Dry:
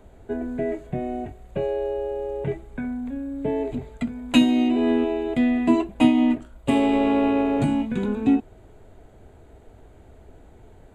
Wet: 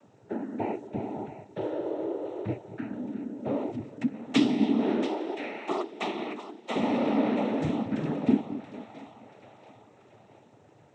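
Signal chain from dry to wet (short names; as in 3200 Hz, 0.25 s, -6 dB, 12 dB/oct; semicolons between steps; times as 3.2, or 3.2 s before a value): on a send: split-band echo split 460 Hz, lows 0.221 s, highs 0.682 s, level -12 dB; on the sum: bit-crush 11-bit; 5.07–6.75 steep high-pass 350 Hz 36 dB/oct; noise vocoder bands 12; gain -5.5 dB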